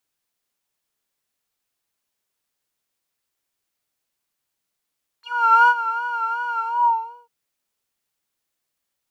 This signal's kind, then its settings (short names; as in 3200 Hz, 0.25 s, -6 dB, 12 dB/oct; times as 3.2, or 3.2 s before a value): synth patch with vibrato A#5, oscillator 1 triangle, oscillator 2 saw, interval +7 st, sub -16 dB, noise -27.5 dB, filter bandpass, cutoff 570 Hz, Q 11, filter envelope 3 oct, filter decay 0.09 s, attack 0.45 s, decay 0.06 s, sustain -13.5 dB, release 0.68 s, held 1.37 s, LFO 2.7 Hz, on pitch 62 cents